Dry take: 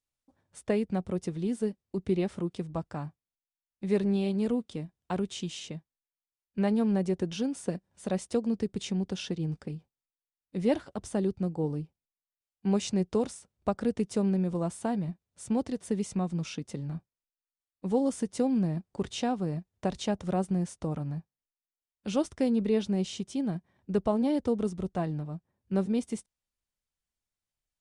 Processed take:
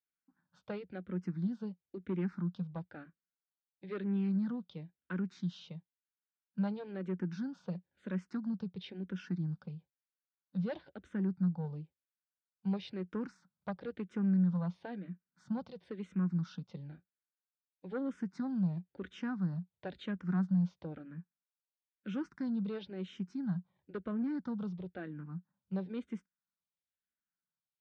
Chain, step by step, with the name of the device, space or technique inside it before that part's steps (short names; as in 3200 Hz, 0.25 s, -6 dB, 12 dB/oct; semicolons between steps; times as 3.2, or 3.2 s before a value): barber-pole phaser into a guitar amplifier (endless phaser -1 Hz; soft clip -23 dBFS, distortion -19 dB; speaker cabinet 100–4200 Hz, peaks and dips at 100 Hz -10 dB, 180 Hz +9 dB, 420 Hz -5 dB, 670 Hz -7 dB, 1500 Hz +10 dB, 2800 Hz -4 dB); gain -5.5 dB